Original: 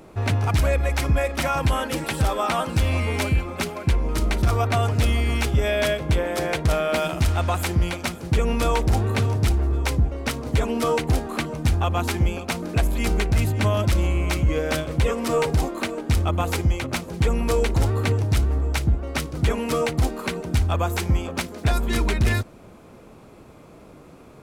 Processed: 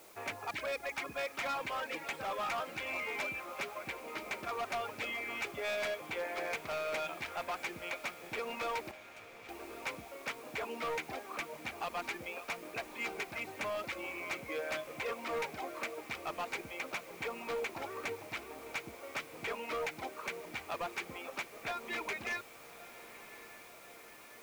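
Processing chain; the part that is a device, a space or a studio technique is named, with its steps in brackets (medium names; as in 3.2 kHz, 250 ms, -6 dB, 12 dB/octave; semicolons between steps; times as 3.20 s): reverb removal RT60 0.73 s; drive-through speaker (band-pass 520–2900 Hz; peaking EQ 2.3 kHz +7.5 dB 0.36 oct; hard clipper -25 dBFS, distortion -9 dB; white noise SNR 19 dB); 8.91–9.49 s: amplifier tone stack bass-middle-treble 6-0-2; echo that smears into a reverb 1146 ms, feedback 66%, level -15 dB; trim -8 dB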